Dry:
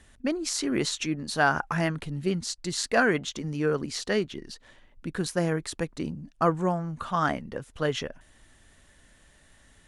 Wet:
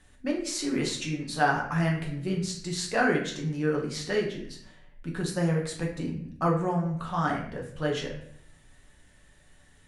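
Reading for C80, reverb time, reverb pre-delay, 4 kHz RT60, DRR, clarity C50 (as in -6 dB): 9.5 dB, 0.65 s, 5 ms, 0.50 s, -2.0 dB, 6.5 dB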